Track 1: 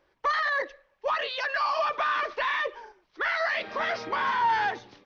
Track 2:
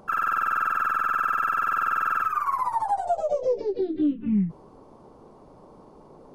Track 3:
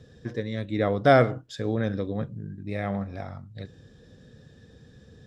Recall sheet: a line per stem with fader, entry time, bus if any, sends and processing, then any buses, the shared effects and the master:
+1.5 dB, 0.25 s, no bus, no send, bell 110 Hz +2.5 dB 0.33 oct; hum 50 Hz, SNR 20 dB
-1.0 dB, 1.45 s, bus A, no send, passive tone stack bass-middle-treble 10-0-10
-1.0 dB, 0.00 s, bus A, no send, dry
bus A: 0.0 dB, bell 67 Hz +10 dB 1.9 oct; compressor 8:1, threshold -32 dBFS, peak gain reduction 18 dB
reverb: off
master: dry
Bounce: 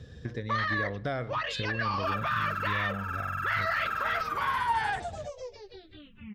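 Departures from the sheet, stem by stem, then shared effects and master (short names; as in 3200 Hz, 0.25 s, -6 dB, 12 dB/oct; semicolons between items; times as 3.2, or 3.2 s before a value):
stem 1 +1.5 dB -> -8.0 dB; stem 2: entry 1.45 s -> 1.95 s; master: extra bell 2400 Hz +5.5 dB 2.6 oct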